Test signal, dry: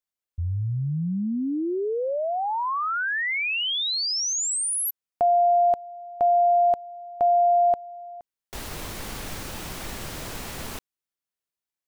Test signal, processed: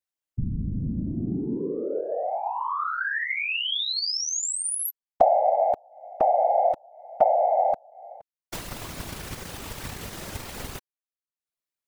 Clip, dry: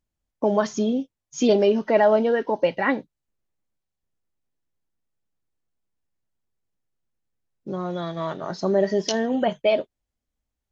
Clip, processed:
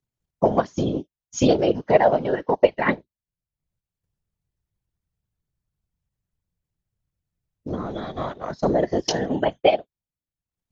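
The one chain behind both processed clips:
transient designer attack +7 dB, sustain −10 dB
random phases in short frames
level −2 dB

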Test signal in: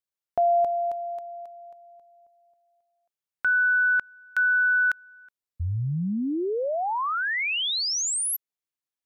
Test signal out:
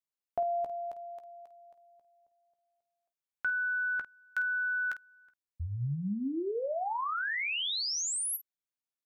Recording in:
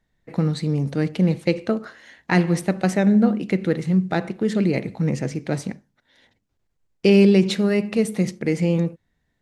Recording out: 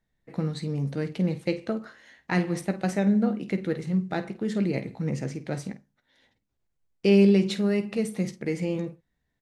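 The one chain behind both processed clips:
ambience of single reflections 15 ms −11 dB, 50 ms −13 dB
level −7 dB

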